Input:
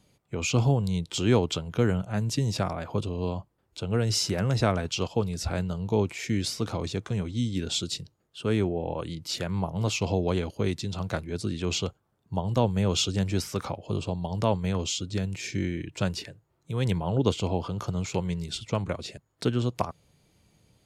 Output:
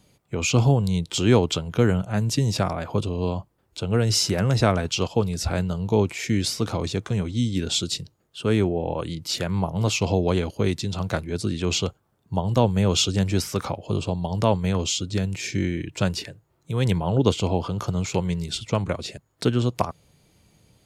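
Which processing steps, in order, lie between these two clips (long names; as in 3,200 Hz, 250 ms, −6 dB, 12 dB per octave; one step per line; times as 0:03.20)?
high-shelf EQ 11,000 Hz +3.5 dB
level +4.5 dB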